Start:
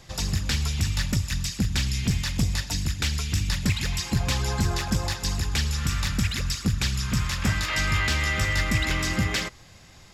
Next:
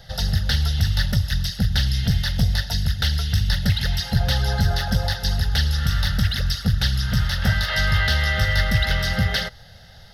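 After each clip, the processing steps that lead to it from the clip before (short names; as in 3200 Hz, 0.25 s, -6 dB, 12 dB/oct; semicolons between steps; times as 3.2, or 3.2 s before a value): fixed phaser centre 1600 Hz, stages 8; gain +6.5 dB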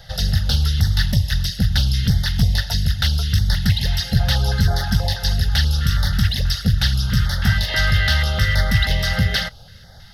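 stepped notch 6.2 Hz 280–2600 Hz; gain +3 dB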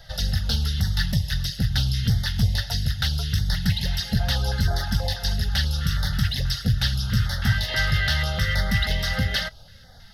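flange 0.21 Hz, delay 3 ms, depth 6.4 ms, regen +55%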